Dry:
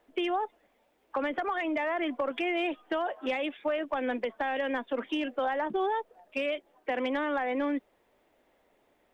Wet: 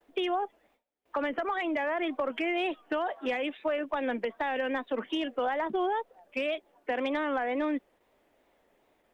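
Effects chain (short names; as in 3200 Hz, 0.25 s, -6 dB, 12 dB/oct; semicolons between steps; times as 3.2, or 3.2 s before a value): gate with hold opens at -59 dBFS; wow and flutter 99 cents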